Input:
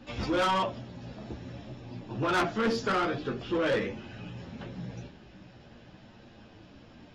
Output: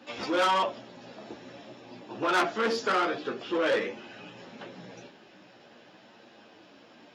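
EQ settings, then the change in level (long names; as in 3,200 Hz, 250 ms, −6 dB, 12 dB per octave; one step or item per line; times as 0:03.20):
high-pass filter 340 Hz 12 dB per octave
+2.5 dB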